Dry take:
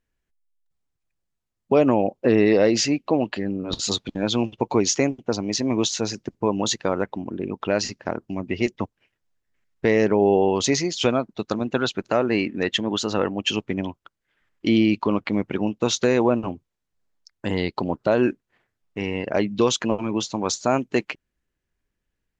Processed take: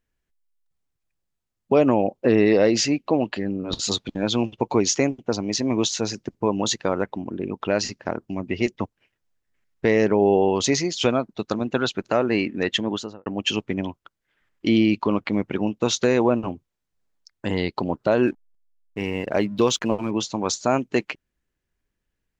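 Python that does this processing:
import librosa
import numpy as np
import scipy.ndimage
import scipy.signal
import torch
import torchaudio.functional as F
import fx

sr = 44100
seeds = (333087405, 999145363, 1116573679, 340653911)

y = fx.studio_fade_out(x, sr, start_s=12.84, length_s=0.42)
y = fx.backlash(y, sr, play_db=-45.0, at=(18.26, 20.1), fade=0.02)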